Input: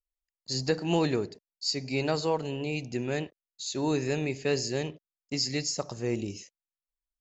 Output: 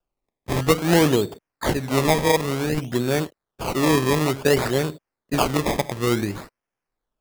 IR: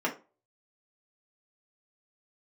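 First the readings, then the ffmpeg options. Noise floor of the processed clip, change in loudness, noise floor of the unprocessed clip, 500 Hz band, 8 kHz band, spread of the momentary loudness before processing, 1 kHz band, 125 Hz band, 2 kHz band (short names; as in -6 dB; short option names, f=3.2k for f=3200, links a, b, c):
under -85 dBFS, +9.0 dB, under -85 dBFS, +9.0 dB, n/a, 11 LU, +12.5 dB, +9.5 dB, +10.5 dB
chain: -af "acrusher=samples=21:mix=1:aa=0.000001:lfo=1:lforange=21:lforate=0.56,volume=9dB"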